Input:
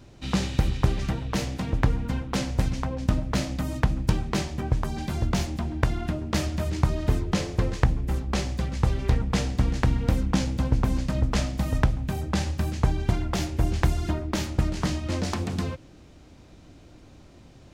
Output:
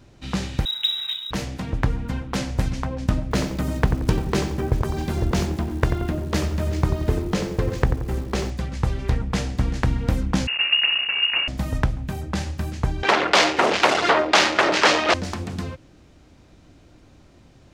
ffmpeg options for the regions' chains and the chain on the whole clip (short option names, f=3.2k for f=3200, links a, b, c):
-filter_complex "[0:a]asettb=1/sr,asplit=3[a][b][c];[a]atrim=end=0.654[d];[b]atrim=start=0.65:end=1.31,asetpts=PTS-STARTPTS,afade=t=in:d=0.004:c=qsin,afade=t=out:st=0.656:d=0.004:c=qsin,lowpass=f=3.3k:t=q:w=0.5098,lowpass=f=3.3k:t=q:w=0.6013,lowpass=f=3.3k:t=q:w=0.9,lowpass=f=3.3k:t=q:w=2.563,afreqshift=-3900,equalizer=f=540:w=0.31:g=-6.5,acrusher=bits=6:mode=log:mix=0:aa=0.000001[e];[c]atrim=start=1.306[f];[d][e]acrossfade=d=0.004:c1=hsin:c2=qsin[g];[g][f]acrossfade=d=0.004:c1=qsin:c2=hsin,asettb=1/sr,asplit=3[h][i][j];[h]atrim=end=3.314[k];[i]atrim=start=3.31:end=8.5,asetpts=PTS-STARTPTS,afade=t=in:d=0.004:c=qsin,afade=t=out:st=5.186:d=0.004:c=qsin,equalizer=f=410:t=o:w=0.59:g=7.5,acrusher=bits=9:dc=4:mix=0:aa=0.000001,asplit=2[l][m];[m]adelay=89,lowpass=f=1.2k:p=1,volume=-7dB,asplit=2[n][o];[o]adelay=89,lowpass=f=1.2k:p=1,volume=0.51,asplit=2[p][q];[q]adelay=89,lowpass=f=1.2k:p=1,volume=0.51,asplit=2[r][s];[s]adelay=89,lowpass=f=1.2k:p=1,volume=0.51,asplit=2[t][u];[u]adelay=89,lowpass=f=1.2k:p=1,volume=0.51,asplit=2[v][w];[w]adelay=89,lowpass=f=1.2k:p=1,volume=0.51[x];[l][n][p][r][t][v][x]amix=inputs=7:normalize=0,atrim=end_sample=228879[y];[j]atrim=start=8.496[z];[k][y]acrossfade=d=0.004:c1=hsin:c2=qsin[aa];[aa][z]acrossfade=d=0.004:c1=qsin:c2=hsin,asettb=1/sr,asplit=3[ab][ac][ad];[ab]atrim=end=10.474[ae];[ac]atrim=start=10.47:end=11.48,asetpts=PTS-STARTPTS,afade=t=in:d=0.004:c=qsin,afade=t=out:st=1.006:d=0.004:c=qsin,acrusher=bits=6:dc=4:mix=0:aa=0.000001,lowpass=f=2.5k:t=q:w=0.5098,lowpass=f=2.5k:t=q:w=0.6013,lowpass=f=2.5k:t=q:w=0.9,lowpass=f=2.5k:t=q:w=2.563,afreqshift=-2900[af];[ad]atrim=start=11.476[ag];[ae][af]acrossfade=d=0.004:c1=hsin:c2=qsin[ah];[ah][ag]acrossfade=d=0.004:c1=qsin:c2=hsin,asettb=1/sr,asplit=3[ai][aj][ak];[ai]atrim=end=13.034[al];[aj]atrim=start=13.03:end=15.14,asetpts=PTS-STARTPTS,afade=t=in:d=0.004:c=qsin,afade=t=out:st=2.106:d=0.004:c=qsin,aeval=exprs='0.562*sin(PI/2*10*val(0)/0.562)':c=same,highpass=610,lowpass=4.2k[am];[ak]atrim=start=15.136[an];[al][am]acrossfade=d=0.004:c1=hsin:c2=qsin[ao];[ao][an]acrossfade=d=0.004:c1=qsin:c2=hsin,equalizer=f=1.6k:w=1.5:g=2,dynaudnorm=f=470:g=9:m=11.5dB,volume=-1dB"